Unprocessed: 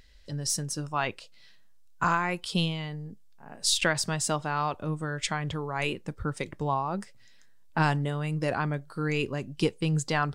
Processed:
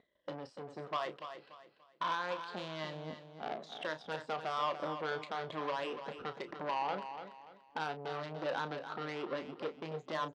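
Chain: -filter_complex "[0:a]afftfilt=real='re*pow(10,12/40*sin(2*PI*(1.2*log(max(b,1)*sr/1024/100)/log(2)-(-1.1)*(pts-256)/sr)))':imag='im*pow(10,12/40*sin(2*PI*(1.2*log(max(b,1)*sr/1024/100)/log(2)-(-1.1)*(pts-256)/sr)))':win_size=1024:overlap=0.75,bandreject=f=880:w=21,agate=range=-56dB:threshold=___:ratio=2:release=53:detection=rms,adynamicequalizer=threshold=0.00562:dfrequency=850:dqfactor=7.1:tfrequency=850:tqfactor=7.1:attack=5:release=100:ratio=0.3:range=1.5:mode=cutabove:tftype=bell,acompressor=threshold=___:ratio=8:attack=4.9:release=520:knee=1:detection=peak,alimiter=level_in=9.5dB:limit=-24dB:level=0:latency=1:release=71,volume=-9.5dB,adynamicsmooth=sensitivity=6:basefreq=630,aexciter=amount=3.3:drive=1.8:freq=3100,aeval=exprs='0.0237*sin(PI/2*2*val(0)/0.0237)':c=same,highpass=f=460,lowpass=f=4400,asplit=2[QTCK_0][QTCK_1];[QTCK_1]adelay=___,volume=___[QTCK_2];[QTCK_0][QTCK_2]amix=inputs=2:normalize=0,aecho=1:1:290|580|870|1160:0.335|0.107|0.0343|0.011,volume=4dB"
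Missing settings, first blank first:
-51dB, -38dB, 32, -11dB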